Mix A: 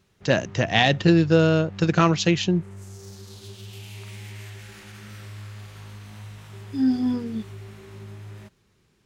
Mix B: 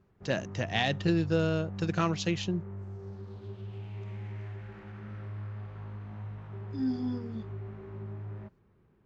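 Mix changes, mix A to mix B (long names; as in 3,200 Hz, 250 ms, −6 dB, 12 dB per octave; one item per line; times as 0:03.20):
speech −10.0 dB
background: add low-pass filter 1,200 Hz 12 dB per octave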